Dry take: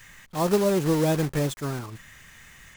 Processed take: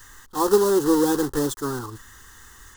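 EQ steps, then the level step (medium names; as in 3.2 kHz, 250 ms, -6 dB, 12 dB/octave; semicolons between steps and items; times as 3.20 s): static phaser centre 630 Hz, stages 6; +6.5 dB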